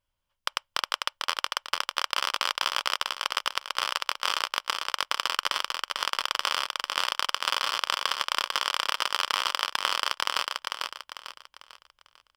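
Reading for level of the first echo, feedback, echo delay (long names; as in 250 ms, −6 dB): −3.5 dB, 37%, 447 ms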